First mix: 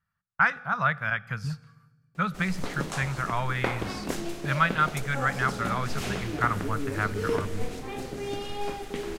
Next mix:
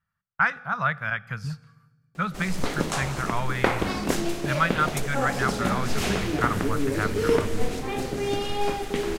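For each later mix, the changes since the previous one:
background +6.5 dB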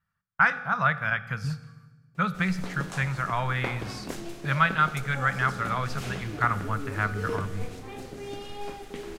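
speech: send +7.5 dB; background -11.0 dB

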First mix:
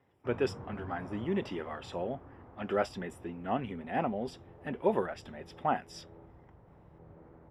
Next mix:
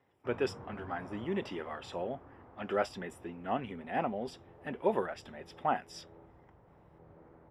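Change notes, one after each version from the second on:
master: add low shelf 280 Hz -5.5 dB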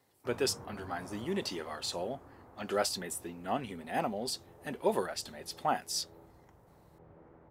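speech: remove polynomial smoothing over 25 samples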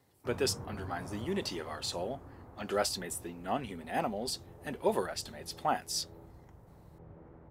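background: add low shelf 220 Hz +9 dB

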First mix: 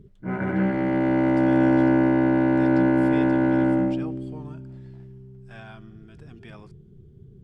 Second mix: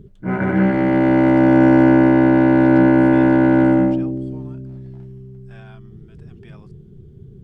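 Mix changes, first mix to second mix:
background +7.0 dB; reverb: off

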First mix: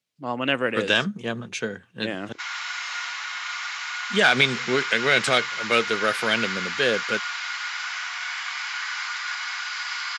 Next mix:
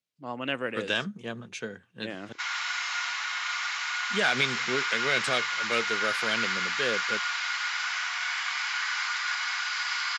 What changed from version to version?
speech -7.5 dB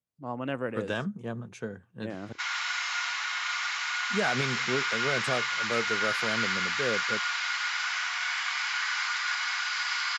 speech: remove weighting filter D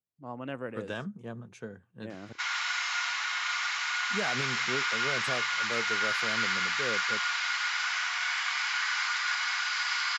speech -5.0 dB

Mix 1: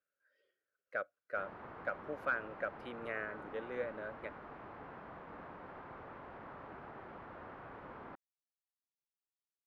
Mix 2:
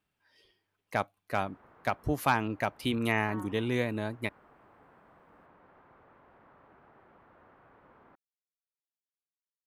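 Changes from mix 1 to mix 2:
speech: remove double band-pass 890 Hz, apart 1.4 oct; background -9.5 dB

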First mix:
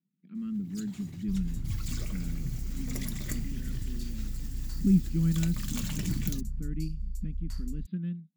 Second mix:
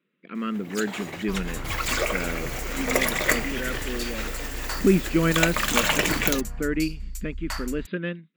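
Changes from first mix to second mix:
first sound -3.0 dB; master: remove EQ curve 190 Hz 0 dB, 510 Hz -30 dB, 2500 Hz -26 dB, 4700 Hz -15 dB

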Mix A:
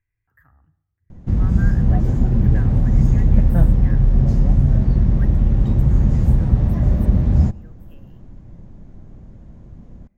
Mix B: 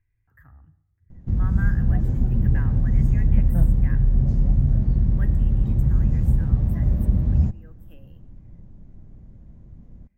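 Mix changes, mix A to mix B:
background -11.5 dB; master: add low shelf 280 Hz +8 dB

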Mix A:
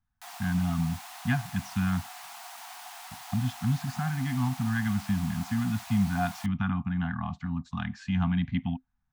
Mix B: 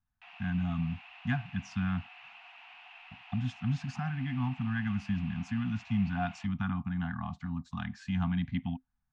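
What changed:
speech -4.0 dB; background: add ladder low-pass 2800 Hz, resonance 80%

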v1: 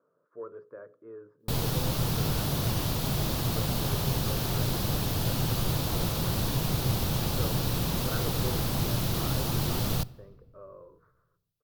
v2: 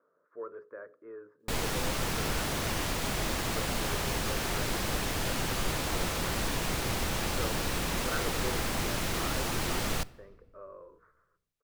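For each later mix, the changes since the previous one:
master: add ten-band EQ 125 Hz -12 dB, 2000 Hz +9 dB, 4000 Hz -4 dB, 8000 Hz +7 dB, 16000 Hz -9 dB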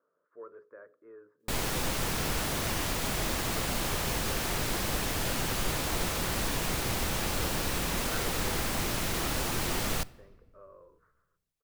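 speech -5.5 dB; master: add high shelf 9500 Hz +5 dB

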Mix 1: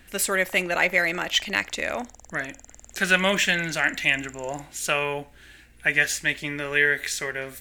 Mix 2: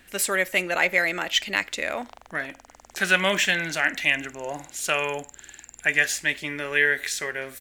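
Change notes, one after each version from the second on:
background: entry +1.60 s; master: add low shelf 140 Hz -9 dB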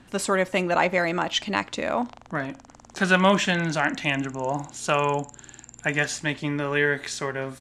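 speech: add ten-band EQ 125 Hz +12 dB, 250 Hz +7 dB, 1000 Hz +10 dB, 2000 Hz -8 dB, 8000 Hz -4 dB; master: add LPF 9100 Hz 24 dB/oct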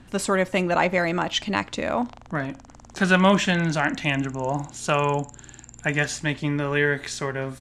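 master: add low shelf 140 Hz +9 dB

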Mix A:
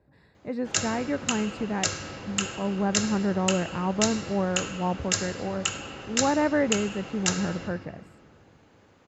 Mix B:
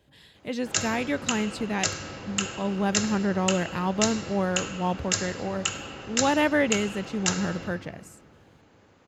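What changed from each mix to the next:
speech: remove running mean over 14 samples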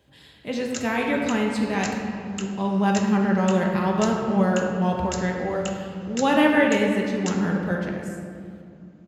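speech: send on; background -8.0 dB

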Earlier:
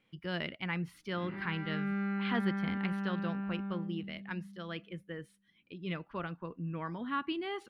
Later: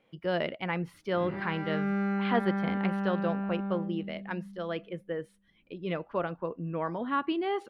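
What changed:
background: remove BPF 170–3600 Hz; master: add bell 590 Hz +13 dB 1.6 oct

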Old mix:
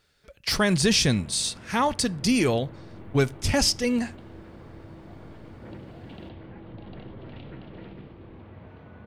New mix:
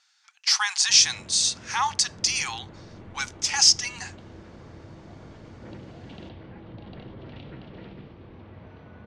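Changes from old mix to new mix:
speech: add brick-wall FIR high-pass 730 Hz; second sound: send off; master: add synth low-pass 6400 Hz, resonance Q 3.1

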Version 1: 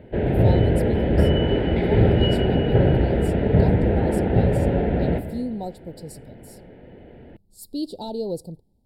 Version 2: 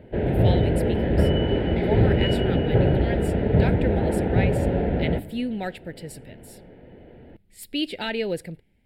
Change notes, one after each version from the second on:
speech: remove Chebyshev band-stop 920–4300 Hz, order 3; background: send -10.0 dB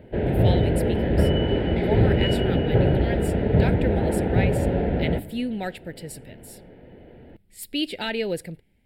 master: add high shelf 6200 Hz +5 dB

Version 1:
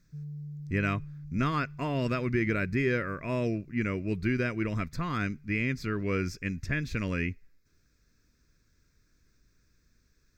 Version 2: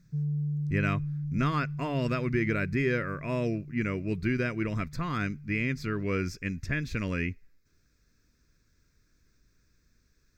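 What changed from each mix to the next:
background +10.0 dB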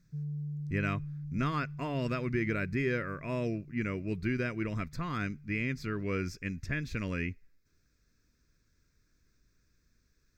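speech -3.5 dB; background -7.0 dB

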